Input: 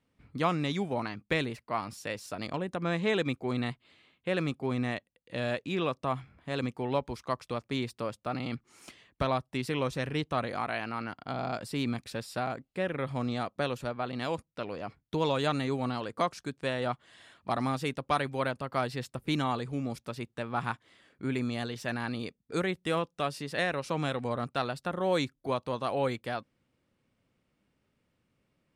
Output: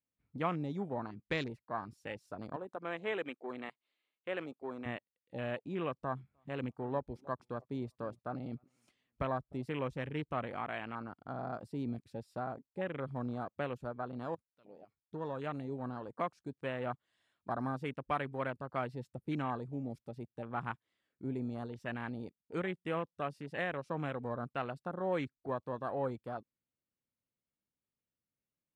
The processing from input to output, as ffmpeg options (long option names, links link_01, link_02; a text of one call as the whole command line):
ffmpeg -i in.wav -filter_complex "[0:a]asettb=1/sr,asplit=3[link_01][link_02][link_03];[link_01]atrim=end=2.564[link_04];[link_02]atrim=start=2.56:end=4.86,asetpts=PTS-STARTPTS,afade=type=in:duration=0.004:curve=qsin,afade=type=out:start_time=2.296:duration=0.004:curve=qsin,highpass=370[link_05];[link_03]atrim=start=4.856[link_06];[link_04][link_05]acrossfade=duration=0.004:curve1=hsin:curve2=qsin[link_07];[link_07][link_06]acrossfade=duration=0.004:curve1=qsin:curve2=hsin,asettb=1/sr,asplit=3[link_08][link_09][link_10];[link_08]atrim=end=5.974[link_11];[link_09]atrim=start=5.97:end=9.63,asetpts=PTS-STARTPTS,afade=type=in:duration=0.004:curve=qsin,afade=type=out:start_time=3.656:duration=0.004:curve=qsin,asplit=2[link_12][link_13];[link_13]adelay=304,lowpass=frequency=1400:poles=1,volume=-20dB,asplit=2[link_14][link_15];[link_15]adelay=304,lowpass=frequency=1400:poles=1,volume=0.3[link_16];[link_12][link_14][link_16]amix=inputs=3:normalize=0,atrim=end_sample=161406[link_17];[link_10]atrim=start=9.626[link_18];[link_11][link_17]acrossfade=duration=0.004:curve1=hsin:curve2=qsin[link_19];[link_19][link_18]acrossfade=duration=0.004:curve1=qsin:curve2=hsin,asplit=2[link_20][link_21];[link_20]atrim=end=14.35,asetpts=PTS-STARTPTS,afade=type=out:start_time=14.346:duration=0.004:curve=hsin:silence=0.223872[link_22];[link_21]atrim=start=14.35,asetpts=PTS-STARTPTS,afade=type=in:duration=2.12:silence=0.223872[link_23];[link_22][link_23]concat=n=2:v=0:a=1,afwtdn=0.0141,volume=-6dB" out.wav